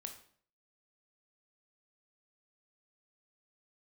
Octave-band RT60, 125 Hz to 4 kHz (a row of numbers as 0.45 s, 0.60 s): 0.60 s, 0.60 s, 0.55 s, 0.50 s, 0.50 s, 0.45 s